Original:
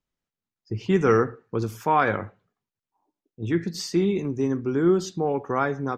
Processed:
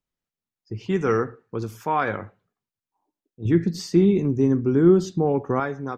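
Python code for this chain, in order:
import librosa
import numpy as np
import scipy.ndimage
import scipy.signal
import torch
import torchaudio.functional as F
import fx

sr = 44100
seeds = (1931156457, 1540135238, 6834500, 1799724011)

y = fx.low_shelf(x, sr, hz=470.0, db=10.5, at=(3.45, 5.6))
y = y * librosa.db_to_amplitude(-2.5)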